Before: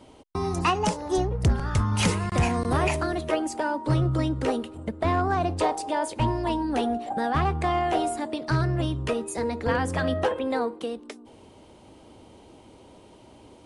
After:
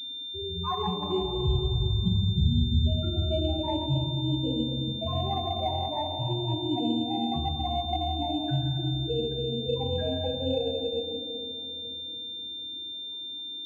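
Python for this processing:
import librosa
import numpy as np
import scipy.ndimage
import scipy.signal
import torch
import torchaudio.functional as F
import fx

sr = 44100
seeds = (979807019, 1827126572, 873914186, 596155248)

y = fx.low_shelf(x, sr, hz=270.0, db=5.5, at=(2.06, 2.86))
y = fx.spec_topn(y, sr, count=2)
y = fx.room_shoebox(y, sr, seeds[0], volume_m3=120.0, walls='hard', distance_m=0.48)
y = fx.pwm(y, sr, carrier_hz=3600.0)
y = y * librosa.db_to_amplitude(-3.5)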